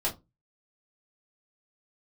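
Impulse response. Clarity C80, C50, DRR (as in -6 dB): 23.5 dB, 15.5 dB, -6.5 dB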